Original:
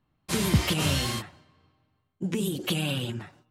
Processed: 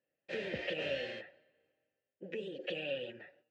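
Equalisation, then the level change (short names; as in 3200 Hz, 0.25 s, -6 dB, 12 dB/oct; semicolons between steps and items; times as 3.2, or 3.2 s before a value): vowel filter e; air absorption 150 m; low shelf 280 Hz -5 dB; +5.5 dB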